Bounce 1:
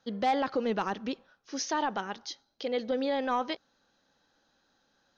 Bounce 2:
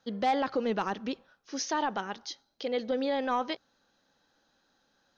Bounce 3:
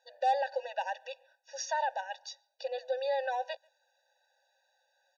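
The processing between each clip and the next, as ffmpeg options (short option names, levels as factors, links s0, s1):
-af "bandreject=f=60:t=h:w=6,bandreject=f=120:t=h:w=6"
-filter_complex "[0:a]asplit=2[s0][s1];[s1]adelay=140,highpass=300,lowpass=3400,asoftclip=type=hard:threshold=0.0355,volume=0.0355[s2];[s0][s2]amix=inputs=2:normalize=0,afftfilt=real='re*eq(mod(floor(b*sr/1024/490),2),1)':imag='im*eq(mod(floor(b*sr/1024/490),2),1)':win_size=1024:overlap=0.75"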